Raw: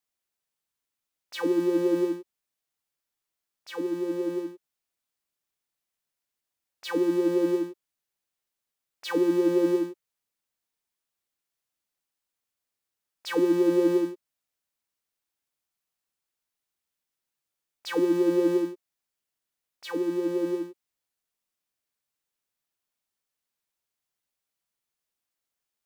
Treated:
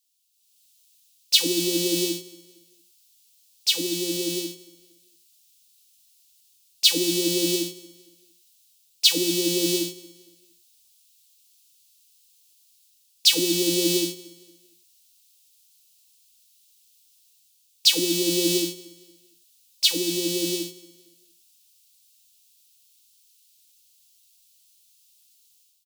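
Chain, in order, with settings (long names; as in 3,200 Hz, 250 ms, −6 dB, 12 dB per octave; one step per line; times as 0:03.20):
drawn EQ curve 110 Hz 0 dB, 480 Hz −16 dB, 1,500 Hz −25 dB, 2,700 Hz +8 dB, 4,000 Hz +14 dB
automatic gain control gain up to 12.5 dB
on a send: repeating echo 230 ms, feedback 36%, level −21 dB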